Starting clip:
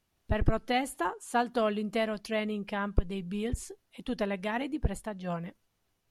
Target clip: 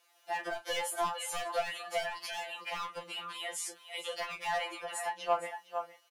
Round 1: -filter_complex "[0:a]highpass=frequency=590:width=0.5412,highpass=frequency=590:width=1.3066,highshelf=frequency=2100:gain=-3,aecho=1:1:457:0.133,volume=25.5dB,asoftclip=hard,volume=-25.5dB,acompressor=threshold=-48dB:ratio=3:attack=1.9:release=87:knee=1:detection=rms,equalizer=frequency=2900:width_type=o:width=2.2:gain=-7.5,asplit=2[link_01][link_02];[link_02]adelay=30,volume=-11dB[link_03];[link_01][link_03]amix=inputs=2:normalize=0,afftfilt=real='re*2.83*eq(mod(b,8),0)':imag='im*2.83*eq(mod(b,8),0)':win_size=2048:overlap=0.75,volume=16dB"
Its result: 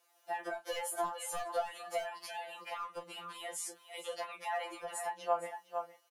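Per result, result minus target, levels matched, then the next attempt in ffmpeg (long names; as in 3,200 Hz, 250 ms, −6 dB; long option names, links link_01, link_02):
gain into a clipping stage and back: distortion −8 dB; 4,000 Hz band −4.5 dB
-filter_complex "[0:a]highpass=frequency=590:width=0.5412,highpass=frequency=590:width=1.3066,highshelf=frequency=2100:gain=-3,aecho=1:1:457:0.133,volume=32.5dB,asoftclip=hard,volume=-32.5dB,acompressor=threshold=-48dB:ratio=3:attack=1.9:release=87:knee=1:detection=rms,equalizer=frequency=2900:width_type=o:width=2.2:gain=-7.5,asplit=2[link_01][link_02];[link_02]adelay=30,volume=-11dB[link_03];[link_01][link_03]amix=inputs=2:normalize=0,afftfilt=real='re*2.83*eq(mod(b,8),0)':imag='im*2.83*eq(mod(b,8),0)':win_size=2048:overlap=0.75,volume=16dB"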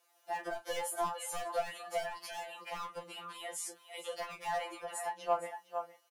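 4,000 Hz band −4.5 dB
-filter_complex "[0:a]highpass=frequency=590:width=0.5412,highpass=frequency=590:width=1.3066,highshelf=frequency=2100:gain=-3,aecho=1:1:457:0.133,volume=32.5dB,asoftclip=hard,volume=-32.5dB,acompressor=threshold=-48dB:ratio=3:attack=1.9:release=87:knee=1:detection=rms,asplit=2[link_01][link_02];[link_02]adelay=30,volume=-11dB[link_03];[link_01][link_03]amix=inputs=2:normalize=0,afftfilt=real='re*2.83*eq(mod(b,8),0)':imag='im*2.83*eq(mod(b,8),0)':win_size=2048:overlap=0.75,volume=16dB"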